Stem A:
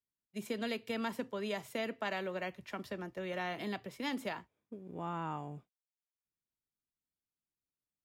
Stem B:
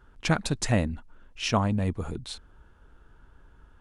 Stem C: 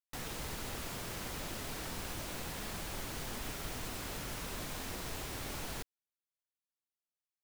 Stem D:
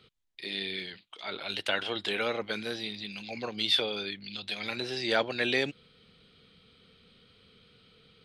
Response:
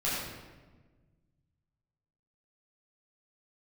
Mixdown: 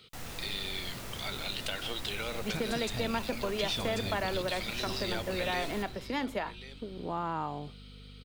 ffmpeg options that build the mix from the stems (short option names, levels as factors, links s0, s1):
-filter_complex "[0:a]aeval=exprs='val(0)+0.00251*(sin(2*PI*50*n/s)+sin(2*PI*2*50*n/s)/2+sin(2*PI*3*50*n/s)/3+sin(2*PI*4*50*n/s)/4+sin(2*PI*5*50*n/s)/5)':c=same,equalizer=f=750:w=0.33:g=7.5,adelay=2100,volume=1.26[s0];[1:a]acompressor=threshold=0.0316:ratio=6,adelay=2250,volume=0.708,asplit=2[s1][s2];[s2]volume=0.596[s3];[2:a]volume=0.562,asplit=2[s4][s5];[s5]volume=0.447[s6];[3:a]highshelf=f=3800:g=11.5,bandreject=f=1700:w=14,acompressor=threshold=0.0178:ratio=2.5,volume=1.06,asplit=2[s7][s8];[s8]volume=0.158[s9];[4:a]atrim=start_sample=2205[s10];[s6][s10]afir=irnorm=-1:irlink=0[s11];[s3][s9]amix=inputs=2:normalize=0,aecho=0:1:1089:1[s12];[s0][s1][s4][s7][s11][s12]amix=inputs=6:normalize=0,acompressor=threshold=0.0178:ratio=1.5"